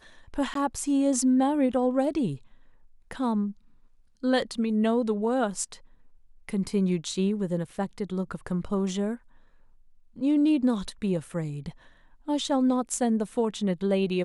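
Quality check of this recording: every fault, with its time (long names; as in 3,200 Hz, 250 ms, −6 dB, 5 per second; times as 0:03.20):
0:00.54–0:00.55: drop-out 13 ms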